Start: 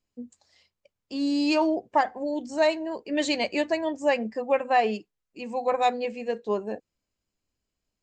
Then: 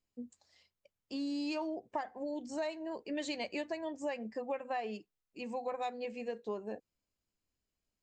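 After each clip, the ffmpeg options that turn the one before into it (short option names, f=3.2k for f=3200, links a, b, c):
-af "acompressor=threshold=-30dB:ratio=4,volume=-5.5dB"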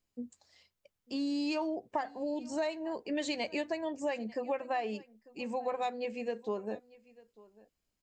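-af "aecho=1:1:896:0.075,volume=3.5dB"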